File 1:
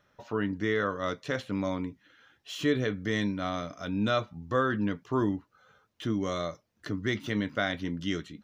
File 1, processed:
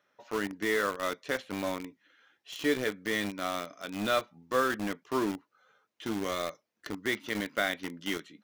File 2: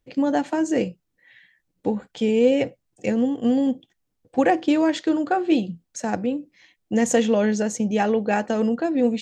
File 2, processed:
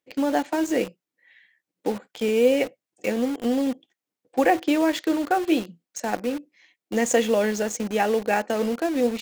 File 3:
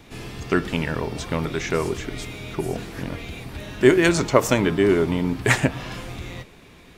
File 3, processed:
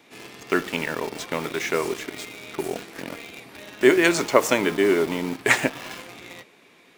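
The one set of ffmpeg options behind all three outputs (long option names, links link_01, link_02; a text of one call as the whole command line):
ffmpeg -i in.wav -filter_complex "[0:a]highpass=280,equalizer=frequency=2200:width_type=o:width=0.46:gain=3,asplit=2[link_01][link_02];[link_02]acrusher=bits=4:mix=0:aa=0.000001,volume=-3.5dB[link_03];[link_01][link_03]amix=inputs=2:normalize=0,volume=-4.5dB" out.wav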